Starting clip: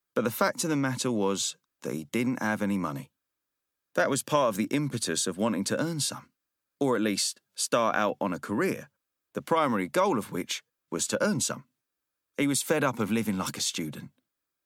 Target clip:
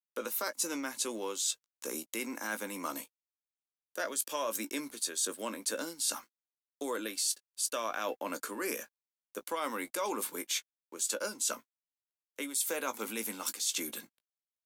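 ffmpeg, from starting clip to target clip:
ffmpeg -i in.wav -filter_complex "[0:a]crystalizer=i=3.5:c=0,areverse,acompressor=threshold=-29dB:ratio=5,areverse,highpass=frequency=280:width=0.5412,highpass=frequency=280:width=1.3066,aeval=exprs='sgn(val(0))*max(abs(val(0))-0.00106,0)':channel_layout=same,asplit=2[link_01][link_02];[link_02]adelay=18,volume=-11dB[link_03];[link_01][link_03]amix=inputs=2:normalize=0,volume=-2.5dB" out.wav

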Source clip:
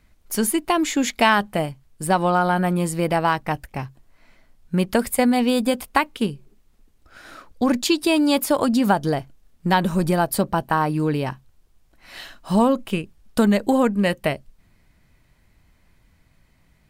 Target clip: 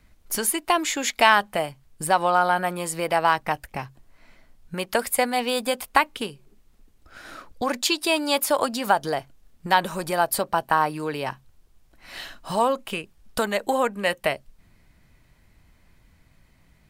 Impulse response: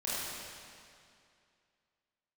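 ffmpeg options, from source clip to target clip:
-filter_complex "[0:a]asettb=1/sr,asplit=3[link_01][link_02][link_03];[link_01]atrim=end=13.534[link_04];[link_02]atrim=start=13.53:end=14.2,asetpts=PTS-STARTPTS,afade=type=in:duration=0.004:curve=qsin,afade=type=out:start_time=0.666:duration=0.004:curve=qsin,bandreject=frequency=4700:width=11[link_05];[link_03]atrim=start=14.196[link_06];[link_04][link_05]acrossfade=duration=0.004:curve1=hsin:curve2=qsin[link_07];[link_07][link_06]acrossfade=duration=0.004:curve1=qsin:curve2=hsin,acrossover=split=470|3100[link_08][link_09][link_10];[link_08]acompressor=threshold=-35dB:ratio=10[link_11];[link_11][link_09][link_10]amix=inputs=3:normalize=0,volume=1dB"

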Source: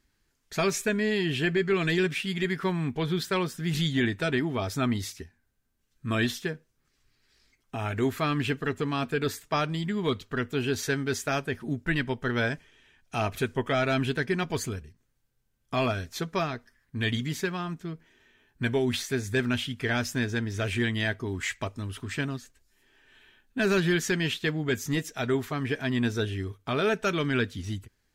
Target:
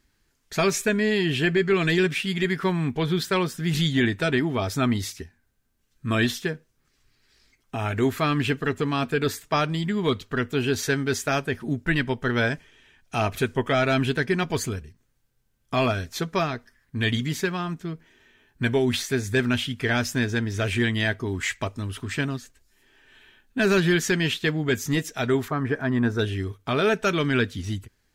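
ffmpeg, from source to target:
ffmpeg -i in.wav -filter_complex "[0:a]asettb=1/sr,asplit=3[link_01][link_02][link_03];[link_01]atrim=end=25.484[link_04];[link_02]atrim=start=25.48:end=26.19,asetpts=PTS-STARTPTS,afade=type=in:duration=0.004:curve=qsin,afade=type=out:start_time=0.706:duration=0.004:curve=qsin,highshelf=frequency=2000:width_type=q:width=1.5:gain=-10[link_05];[link_03]atrim=start=26.186[link_06];[link_04][link_05]acrossfade=duration=0.004:curve1=hsin:curve2=qsin[link_07];[link_07][link_06]acrossfade=duration=0.004:curve1=qsin:curve2=hsin,volume=4dB" out.wav

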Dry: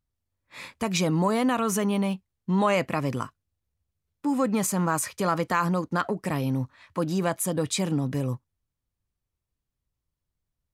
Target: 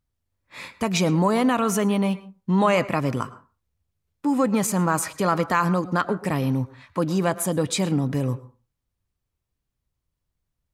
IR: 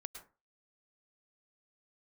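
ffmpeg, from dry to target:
-filter_complex "[0:a]asplit=2[link_01][link_02];[1:a]atrim=start_sample=2205,highshelf=frequency=6800:gain=-11.5[link_03];[link_02][link_03]afir=irnorm=-1:irlink=0,volume=-1.5dB[link_04];[link_01][link_04]amix=inputs=2:normalize=0"

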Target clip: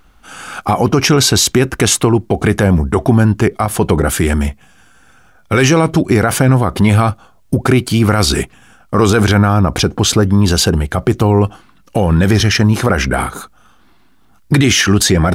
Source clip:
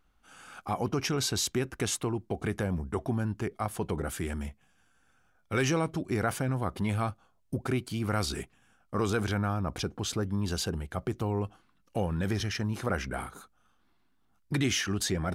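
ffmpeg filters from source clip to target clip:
ffmpeg -i in.wav -af "alimiter=level_in=21.5dB:limit=-1dB:release=50:level=0:latency=1,volume=-1dB" out.wav

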